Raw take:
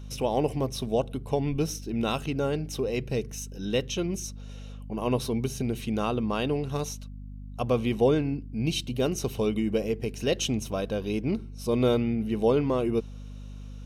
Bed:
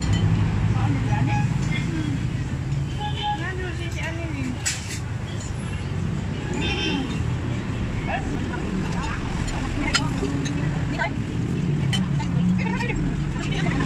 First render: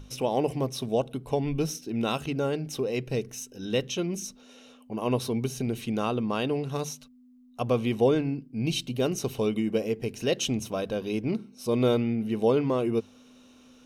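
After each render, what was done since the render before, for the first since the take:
mains-hum notches 50/100/150/200 Hz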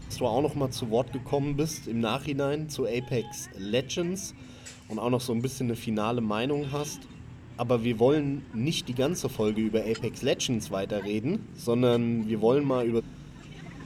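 mix in bed −20.5 dB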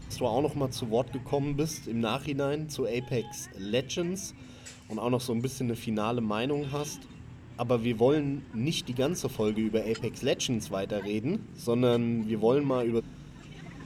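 level −1.5 dB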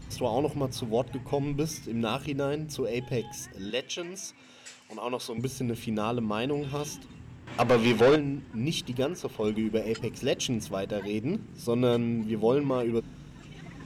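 0:03.70–0:05.38: meter weighting curve A
0:07.47–0:08.16: mid-hump overdrive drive 23 dB, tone 4,500 Hz, clips at −12.5 dBFS
0:09.04–0:09.44: bass and treble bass −8 dB, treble −9 dB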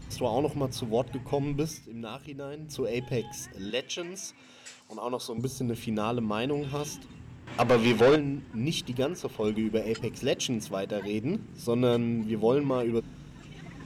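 0:01.60–0:02.83: duck −9.5 dB, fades 0.26 s
0:04.81–0:05.71: flat-topped bell 2,200 Hz −9 dB 1.1 octaves
0:10.35–0:11.02: high-pass filter 120 Hz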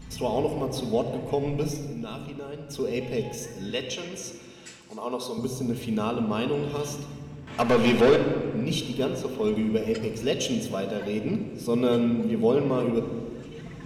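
rectangular room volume 3,700 cubic metres, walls mixed, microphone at 1.5 metres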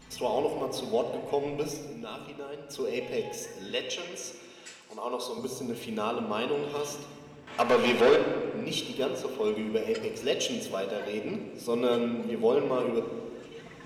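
bass and treble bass −14 dB, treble −2 dB
hum removal 67.96 Hz, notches 39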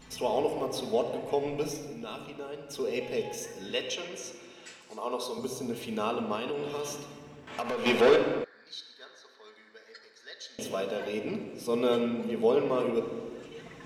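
0:03.95–0:04.81: high-shelf EQ 7,500 Hz −7 dB
0:06.35–0:07.86: downward compressor, threshold −29 dBFS
0:08.44–0:10.59: pair of resonant band-passes 2,700 Hz, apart 1.3 octaves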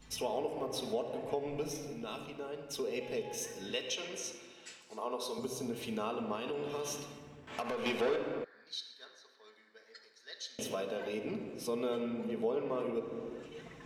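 downward compressor 3 to 1, threshold −35 dBFS, peak gain reduction 14.5 dB
multiband upward and downward expander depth 40%

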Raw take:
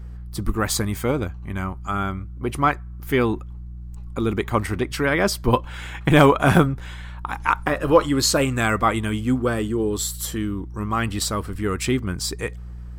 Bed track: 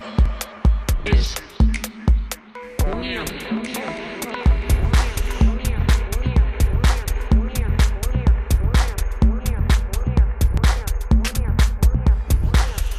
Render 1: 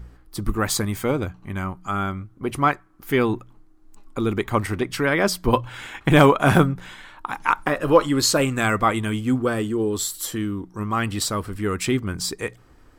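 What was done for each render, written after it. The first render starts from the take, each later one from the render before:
hum removal 60 Hz, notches 3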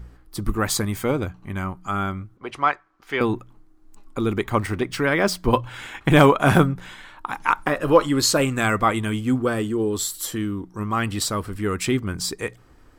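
0:02.37–0:03.21: three-way crossover with the lows and the highs turned down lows −14 dB, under 470 Hz, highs −24 dB, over 6,500 Hz
0:04.50–0:05.65: running median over 3 samples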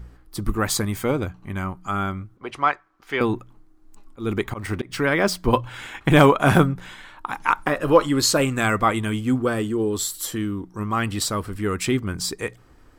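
0:03.16–0:04.96: volume swells 150 ms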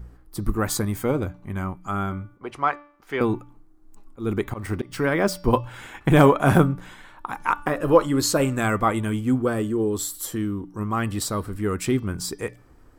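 parametric band 3,300 Hz −6.5 dB 2.3 octaves
hum removal 291.4 Hz, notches 20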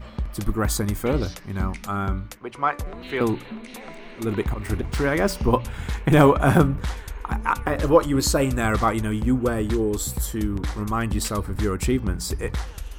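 mix in bed track −12 dB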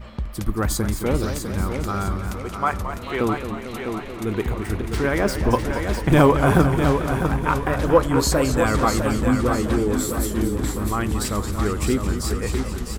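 repeating echo 653 ms, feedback 40%, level −7 dB
feedback echo with a swinging delay time 222 ms, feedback 66%, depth 133 cents, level −10 dB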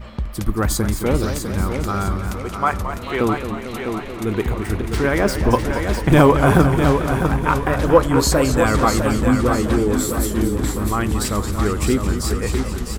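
level +3 dB
brickwall limiter −1 dBFS, peak gain reduction 1.5 dB

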